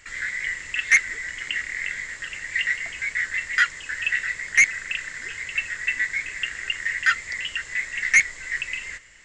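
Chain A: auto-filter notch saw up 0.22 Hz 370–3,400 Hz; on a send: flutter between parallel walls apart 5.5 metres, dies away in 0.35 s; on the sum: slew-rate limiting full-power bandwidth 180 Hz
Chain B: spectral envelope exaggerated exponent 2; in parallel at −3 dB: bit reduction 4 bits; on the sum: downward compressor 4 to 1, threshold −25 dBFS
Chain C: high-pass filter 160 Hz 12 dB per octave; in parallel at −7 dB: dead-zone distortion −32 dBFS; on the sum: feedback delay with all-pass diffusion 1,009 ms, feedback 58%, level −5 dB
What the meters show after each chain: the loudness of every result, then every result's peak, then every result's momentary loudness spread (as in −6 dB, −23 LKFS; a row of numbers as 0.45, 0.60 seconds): −27.5, −28.0, −20.0 LKFS; −13.0, −12.0, −3.0 dBFS; 8, 5, 10 LU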